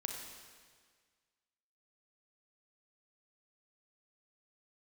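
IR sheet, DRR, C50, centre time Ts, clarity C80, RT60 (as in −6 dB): 1.5 dB, 3.0 dB, 61 ms, 4.5 dB, 1.7 s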